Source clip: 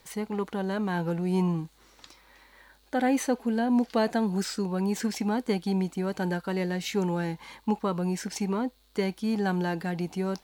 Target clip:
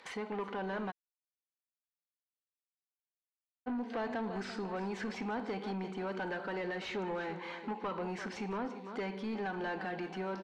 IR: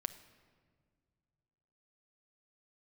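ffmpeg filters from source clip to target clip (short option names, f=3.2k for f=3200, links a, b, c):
-filter_complex "[0:a]tiltshelf=f=970:g=-3,aecho=1:1:340|680|1020:0.15|0.0584|0.0228,agate=range=-33dB:threshold=-46dB:ratio=3:detection=peak[a];[1:a]atrim=start_sample=2205,afade=t=out:st=0.37:d=0.01,atrim=end_sample=16758,asetrate=70560,aresample=44100[b];[a][b]afir=irnorm=-1:irlink=0,acompressor=threshold=-32dB:ratio=6,highpass=300,asoftclip=type=tanh:threshold=-39dB,lowpass=2.4k,acompressor=mode=upward:threshold=-46dB:ratio=2.5,asplit=3[c][d][e];[c]afade=t=out:st=0.9:d=0.02[f];[d]acrusher=bits=3:mix=0:aa=0.5,afade=t=in:st=0.9:d=0.02,afade=t=out:st=3.66:d=0.02[g];[e]afade=t=in:st=3.66:d=0.02[h];[f][g][h]amix=inputs=3:normalize=0,volume=7dB"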